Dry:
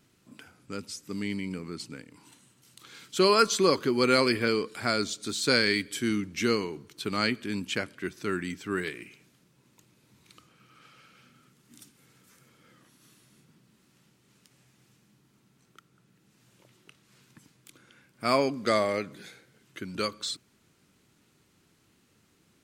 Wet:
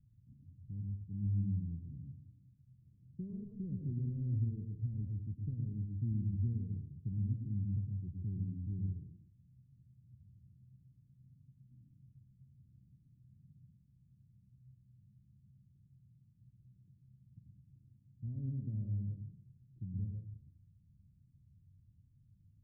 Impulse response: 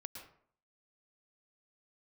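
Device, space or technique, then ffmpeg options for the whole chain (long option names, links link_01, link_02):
club heard from the street: -filter_complex "[0:a]alimiter=limit=-15.5dB:level=0:latency=1,lowpass=frequency=120:width=0.5412,lowpass=frequency=120:width=1.3066[link_01];[1:a]atrim=start_sample=2205[link_02];[link_01][link_02]afir=irnorm=-1:irlink=0,volume=14dB"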